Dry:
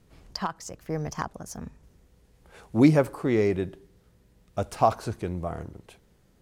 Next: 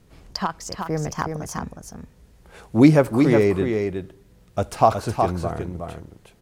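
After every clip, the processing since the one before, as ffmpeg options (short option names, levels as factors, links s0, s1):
-af "aecho=1:1:367:0.531,volume=1.78"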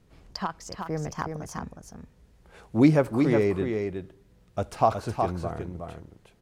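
-af "highshelf=f=7500:g=-6,volume=0.531"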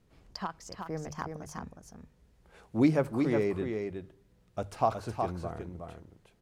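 -af "bandreject=f=50:t=h:w=6,bandreject=f=100:t=h:w=6,bandreject=f=150:t=h:w=6,volume=0.531"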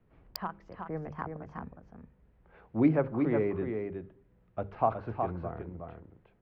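-filter_complex "[0:a]bandreject=f=66.25:t=h:w=4,bandreject=f=132.5:t=h:w=4,bandreject=f=198.75:t=h:w=4,bandreject=f=265:t=h:w=4,bandreject=f=331.25:t=h:w=4,bandreject=f=397.5:t=h:w=4,bandreject=f=463.75:t=h:w=4,bandreject=f=530:t=h:w=4,acrossover=split=230|550|2600[s0][s1][s2][s3];[s3]acrusher=bits=4:mix=0:aa=0.000001[s4];[s0][s1][s2][s4]amix=inputs=4:normalize=0"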